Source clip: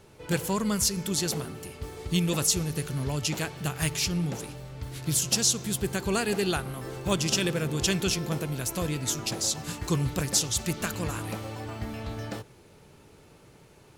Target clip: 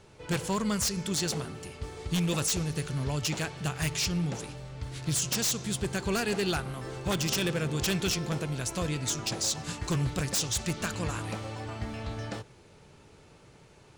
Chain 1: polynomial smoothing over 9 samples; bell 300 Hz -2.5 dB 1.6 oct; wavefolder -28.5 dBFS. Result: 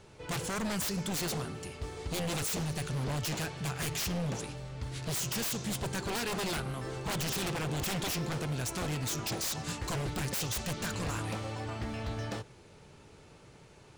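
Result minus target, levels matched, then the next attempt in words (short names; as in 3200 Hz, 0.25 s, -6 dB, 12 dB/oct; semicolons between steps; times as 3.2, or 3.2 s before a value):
wavefolder: distortion +11 dB
polynomial smoothing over 9 samples; bell 300 Hz -2.5 dB 1.6 oct; wavefolder -22 dBFS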